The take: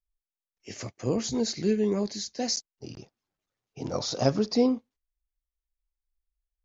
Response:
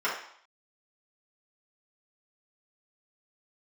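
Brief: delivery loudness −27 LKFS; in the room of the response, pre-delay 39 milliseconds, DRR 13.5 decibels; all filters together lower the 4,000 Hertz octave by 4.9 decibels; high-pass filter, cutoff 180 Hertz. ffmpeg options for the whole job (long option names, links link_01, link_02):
-filter_complex "[0:a]highpass=180,equalizer=frequency=4000:width_type=o:gain=-6.5,asplit=2[link_01][link_02];[1:a]atrim=start_sample=2205,adelay=39[link_03];[link_02][link_03]afir=irnorm=-1:irlink=0,volume=-25.5dB[link_04];[link_01][link_04]amix=inputs=2:normalize=0,volume=2.5dB"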